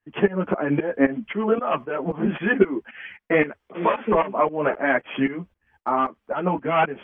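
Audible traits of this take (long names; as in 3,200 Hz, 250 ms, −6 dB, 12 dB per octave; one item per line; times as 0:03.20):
tremolo saw up 3.8 Hz, depth 90%
a shimmering, thickened sound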